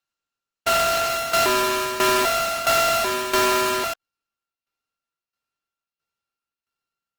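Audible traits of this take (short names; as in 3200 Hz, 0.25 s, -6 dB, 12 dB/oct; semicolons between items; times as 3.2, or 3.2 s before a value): a buzz of ramps at a fixed pitch in blocks of 32 samples; tremolo saw down 1.5 Hz, depth 75%; aliases and images of a low sample rate 9500 Hz, jitter 20%; Opus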